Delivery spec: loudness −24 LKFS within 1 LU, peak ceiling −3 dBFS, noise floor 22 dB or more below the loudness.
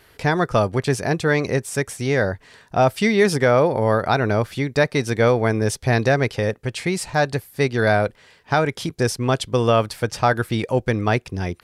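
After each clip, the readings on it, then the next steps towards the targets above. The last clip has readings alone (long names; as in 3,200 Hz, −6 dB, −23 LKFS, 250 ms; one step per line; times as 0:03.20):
integrated loudness −20.5 LKFS; sample peak −6.0 dBFS; target loudness −24.0 LKFS
→ level −3.5 dB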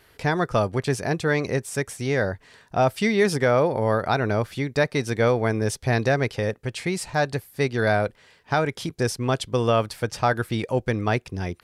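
integrated loudness −24.0 LKFS; sample peak −9.5 dBFS; background noise floor −57 dBFS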